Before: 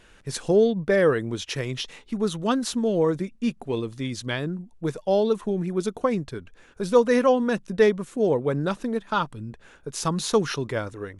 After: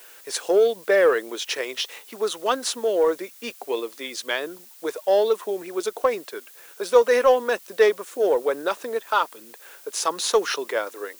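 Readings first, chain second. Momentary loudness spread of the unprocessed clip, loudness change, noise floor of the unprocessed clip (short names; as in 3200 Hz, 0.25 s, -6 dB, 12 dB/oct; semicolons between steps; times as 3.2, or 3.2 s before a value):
12 LU, +1.5 dB, -54 dBFS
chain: HPF 410 Hz 24 dB/oct; in parallel at -9.5 dB: hard clip -22 dBFS, distortion -8 dB; on the sum: added noise blue -50 dBFS; gain +2 dB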